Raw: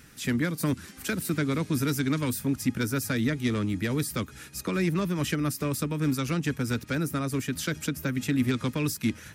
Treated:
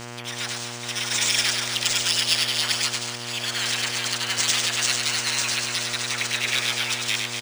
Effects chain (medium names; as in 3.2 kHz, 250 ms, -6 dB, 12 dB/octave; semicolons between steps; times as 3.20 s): gliding tape speed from 160% -> 92%; bass shelf 160 Hz -7.5 dB; in parallel at +0.5 dB: compressor with a negative ratio -35 dBFS; on the sum: slow attack 474 ms; spectral gate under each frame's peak -20 dB weak; phase dispersion lows, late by 107 ms, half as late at 380 Hz; on a send: reverse bouncing-ball echo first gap 100 ms, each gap 1.4×, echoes 5; on the sum: frequency shift +20 Hz; frequency weighting ITU-R 468; mains buzz 120 Hz, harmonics 27, -44 dBFS -3 dB/octave; decimation joined by straight lines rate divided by 3×; trim +6.5 dB